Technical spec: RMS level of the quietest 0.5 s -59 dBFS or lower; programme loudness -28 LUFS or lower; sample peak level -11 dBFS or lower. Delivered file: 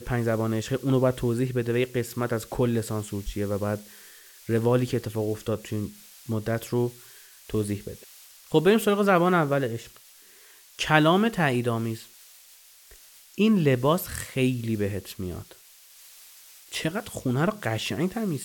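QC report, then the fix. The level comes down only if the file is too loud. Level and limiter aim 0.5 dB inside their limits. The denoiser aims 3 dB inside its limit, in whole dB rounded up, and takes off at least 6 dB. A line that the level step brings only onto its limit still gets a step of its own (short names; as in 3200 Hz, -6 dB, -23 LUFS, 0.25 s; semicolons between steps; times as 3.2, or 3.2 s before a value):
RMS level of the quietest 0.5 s -53 dBFS: fail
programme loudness -26.0 LUFS: fail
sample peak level -3.0 dBFS: fail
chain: denoiser 7 dB, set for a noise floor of -53 dBFS; gain -2.5 dB; limiter -11.5 dBFS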